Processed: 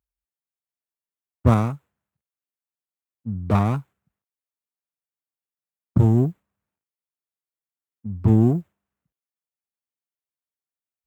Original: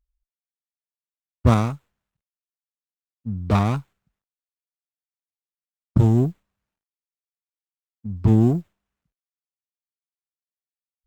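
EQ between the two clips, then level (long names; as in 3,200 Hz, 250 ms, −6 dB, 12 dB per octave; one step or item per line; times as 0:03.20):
high-pass filter 68 Hz 24 dB per octave
parametric band 4,500 Hz −8 dB 1.6 octaves
0.0 dB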